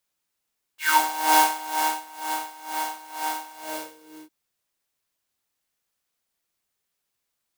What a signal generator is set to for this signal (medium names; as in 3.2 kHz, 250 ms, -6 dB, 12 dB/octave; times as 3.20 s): synth patch with tremolo D#4, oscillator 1 square, sub -8.5 dB, noise -1 dB, filter highpass, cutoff 340 Hz, Q 6, filter envelope 3 oct, filter decay 0.21 s, attack 271 ms, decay 0.98 s, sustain -14 dB, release 0.78 s, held 2.73 s, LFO 2.1 Hz, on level 18 dB